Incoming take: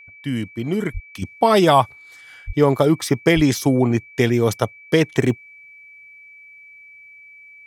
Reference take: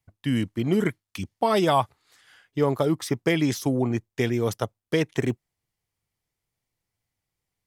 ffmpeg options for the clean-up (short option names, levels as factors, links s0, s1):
-filter_complex "[0:a]bandreject=f=2300:w=30,asplit=3[s0][s1][s2];[s0]afade=t=out:st=0.93:d=0.02[s3];[s1]highpass=f=140:w=0.5412,highpass=f=140:w=1.3066,afade=t=in:st=0.93:d=0.02,afade=t=out:st=1.05:d=0.02[s4];[s2]afade=t=in:st=1.05:d=0.02[s5];[s3][s4][s5]amix=inputs=3:normalize=0,asplit=3[s6][s7][s8];[s6]afade=t=out:st=2.46:d=0.02[s9];[s7]highpass=f=140:w=0.5412,highpass=f=140:w=1.3066,afade=t=in:st=2.46:d=0.02,afade=t=out:st=2.58:d=0.02[s10];[s8]afade=t=in:st=2.58:d=0.02[s11];[s9][s10][s11]amix=inputs=3:normalize=0,asplit=3[s12][s13][s14];[s12]afade=t=out:st=3.35:d=0.02[s15];[s13]highpass=f=140:w=0.5412,highpass=f=140:w=1.3066,afade=t=in:st=3.35:d=0.02,afade=t=out:st=3.47:d=0.02[s16];[s14]afade=t=in:st=3.47:d=0.02[s17];[s15][s16][s17]amix=inputs=3:normalize=0,asetnsamples=n=441:p=0,asendcmd='1.22 volume volume -7dB',volume=1"